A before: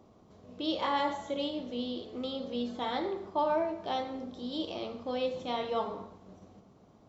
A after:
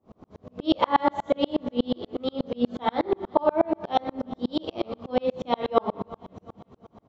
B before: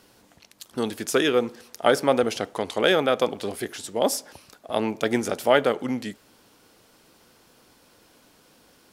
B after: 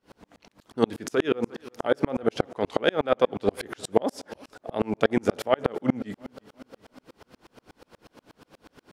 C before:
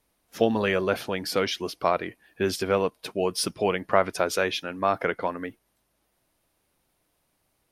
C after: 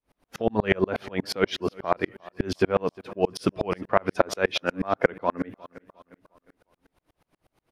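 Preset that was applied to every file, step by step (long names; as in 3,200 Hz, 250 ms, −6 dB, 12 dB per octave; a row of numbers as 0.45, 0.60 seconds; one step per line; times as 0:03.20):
low-pass filter 1,900 Hz 6 dB per octave
downward compressor 12 to 1, threshold −24 dBFS
repeating echo 356 ms, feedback 48%, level −20 dB
tremolo with a ramp in dB swelling 8.3 Hz, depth 38 dB
loudness normalisation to −27 LKFS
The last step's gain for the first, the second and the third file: +17.5, +14.0, +15.0 decibels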